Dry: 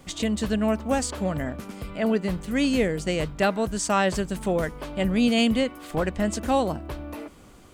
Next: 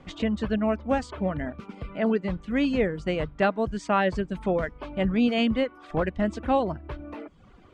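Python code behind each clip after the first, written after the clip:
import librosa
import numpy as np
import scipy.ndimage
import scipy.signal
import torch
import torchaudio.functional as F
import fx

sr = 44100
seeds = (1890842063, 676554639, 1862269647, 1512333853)

y = scipy.signal.sosfilt(scipy.signal.butter(2, 2700.0, 'lowpass', fs=sr, output='sos'), x)
y = fx.dereverb_blind(y, sr, rt60_s=0.72)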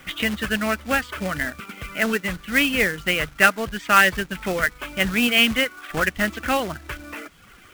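y = fx.band_shelf(x, sr, hz=2100.0, db=15.5, octaves=1.7)
y = fx.quant_companded(y, sr, bits=4)
y = y * 10.0 ** (-1.0 / 20.0)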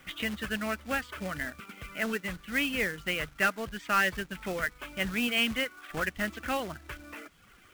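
y = 10.0 ** (-7.0 / 20.0) * np.tanh(x / 10.0 ** (-7.0 / 20.0))
y = y * 10.0 ** (-9.0 / 20.0)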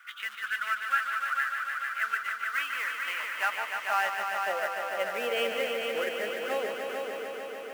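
y = fx.filter_sweep_highpass(x, sr, from_hz=1400.0, to_hz=450.0, start_s=2.13, end_s=5.49, q=6.6)
y = fx.echo_heads(y, sr, ms=148, heads='all three', feedback_pct=73, wet_db=-8.5)
y = y * 10.0 ** (-6.5 / 20.0)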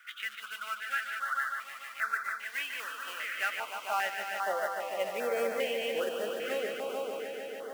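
y = fx.filter_held_notch(x, sr, hz=2.5, low_hz=950.0, high_hz=2900.0)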